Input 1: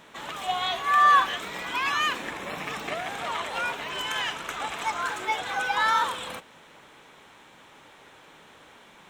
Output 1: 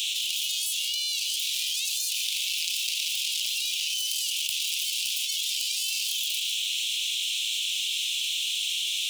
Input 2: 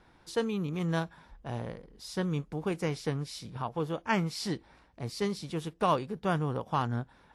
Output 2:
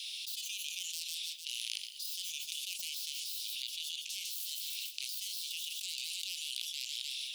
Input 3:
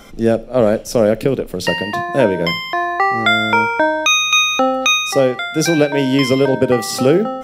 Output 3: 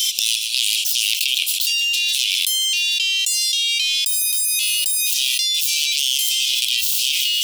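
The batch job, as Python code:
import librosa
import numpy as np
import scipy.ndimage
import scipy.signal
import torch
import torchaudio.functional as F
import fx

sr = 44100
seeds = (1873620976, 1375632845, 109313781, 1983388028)

y = fx.tracing_dist(x, sr, depth_ms=0.43)
y = scipy.signal.sosfilt(scipy.signal.butter(12, 2700.0, 'highpass', fs=sr, output='sos'), y)
y = fx.echo_feedback(y, sr, ms=151, feedback_pct=39, wet_db=-22)
y = fx.env_flatten(y, sr, amount_pct=100)
y = y * 10.0 ** (-7.0 / 20.0)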